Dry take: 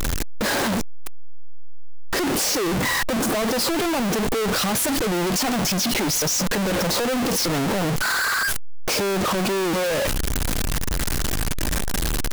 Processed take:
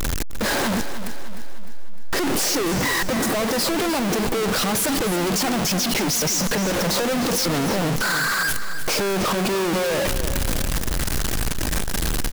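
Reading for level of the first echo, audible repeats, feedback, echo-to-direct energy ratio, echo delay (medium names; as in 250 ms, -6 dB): -11.0 dB, 4, 50%, -10.0 dB, 304 ms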